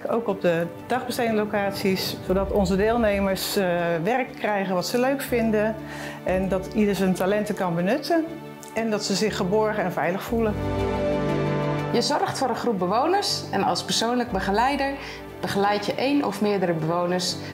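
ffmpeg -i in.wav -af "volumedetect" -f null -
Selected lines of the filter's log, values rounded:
mean_volume: -23.7 dB
max_volume: -10.9 dB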